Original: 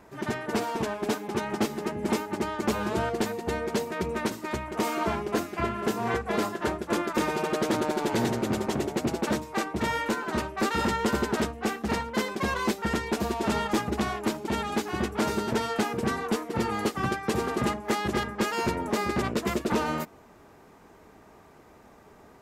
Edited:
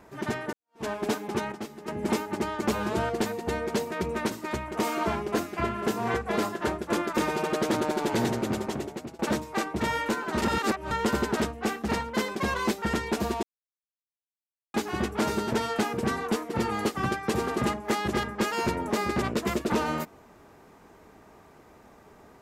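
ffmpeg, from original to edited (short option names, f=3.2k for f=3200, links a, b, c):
-filter_complex "[0:a]asplit=9[a][b][c][d][e][f][g][h][i];[a]atrim=end=0.53,asetpts=PTS-STARTPTS,afade=t=out:st=0.526:d=0.004:c=hsin[j];[b]atrim=start=0.53:end=1.522,asetpts=PTS-STARTPTS,afade=t=in:d=0.32:c=exp[k];[c]atrim=start=1.518:end=1.882,asetpts=PTS-STARTPTS,volume=-10.5dB[l];[d]atrim=start=1.878:end=9.19,asetpts=PTS-STARTPTS,afade=t=out:st=6.282:d=1.03:c=qsin:silence=0.0891251[m];[e]atrim=start=9.19:end=10.422,asetpts=PTS-STARTPTS,afade=t=in:d=0.004:c=hsin:silence=0.0891251[n];[f]atrim=start=10.418:end=10.912,asetpts=PTS-STARTPTS,areverse[o];[g]atrim=start=10.908:end=13.43,asetpts=PTS-STARTPTS,afade=t=out:st=2.518:d=0.004:c=hsin[p];[h]atrim=start=13.43:end=14.74,asetpts=PTS-STARTPTS,volume=0[q];[i]atrim=start=14.74,asetpts=PTS-STARTPTS,afade=t=in:d=0.004:c=hsin[r];[j][k]concat=n=2:v=0:a=1[s];[s][l]acrossfade=d=0.004:c1=hsin:c2=hsin[t];[m][n]concat=n=2:v=0:a=1[u];[t][u]acrossfade=d=0.004:c1=hsin:c2=hsin[v];[v][o]acrossfade=d=0.004:c1=hsin:c2=hsin[w];[p][q][r]concat=n=3:v=0:a=1[x];[w][x]acrossfade=d=0.004:c1=hsin:c2=hsin"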